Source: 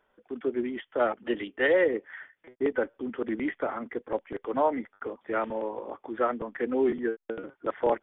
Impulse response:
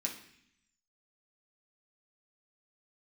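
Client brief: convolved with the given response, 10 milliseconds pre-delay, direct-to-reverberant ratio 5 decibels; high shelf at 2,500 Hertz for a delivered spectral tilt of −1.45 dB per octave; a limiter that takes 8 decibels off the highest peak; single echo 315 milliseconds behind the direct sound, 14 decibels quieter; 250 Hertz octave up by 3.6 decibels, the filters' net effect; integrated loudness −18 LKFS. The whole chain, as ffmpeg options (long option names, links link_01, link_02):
-filter_complex "[0:a]equalizer=frequency=250:width_type=o:gain=4.5,highshelf=frequency=2500:gain=5,alimiter=limit=-20dB:level=0:latency=1,aecho=1:1:315:0.2,asplit=2[link_01][link_02];[1:a]atrim=start_sample=2205,adelay=10[link_03];[link_02][link_03]afir=irnorm=-1:irlink=0,volume=-6dB[link_04];[link_01][link_04]amix=inputs=2:normalize=0,volume=12.5dB"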